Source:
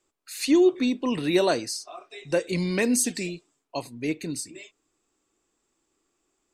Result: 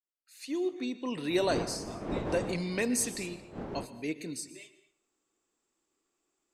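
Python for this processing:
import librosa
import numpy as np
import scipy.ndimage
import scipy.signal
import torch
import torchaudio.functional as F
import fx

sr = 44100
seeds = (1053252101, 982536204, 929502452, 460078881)

y = fx.fade_in_head(x, sr, length_s=1.35)
y = fx.dmg_wind(y, sr, seeds[0], corner_hz=400.0, level_db=-21.0, at=(1.29, 3.84), fade=0.02)
y = fx.low_shelf(y, sr, hz=110.0, db=-8.0)
y = y + 10.0 ** (-22.5 / 20.0) * np.pad(y, (int(226 * sr / 1000.0), 0))[:len(y)]
y = fx.rev_plate(y, sr, seeds[1], rt60_s=0.57, hf_ratio=0.8, predelay_ms=105, drr_db=14.5)
y = F.gain(torch.from_numpy(y), -6.0).numpy()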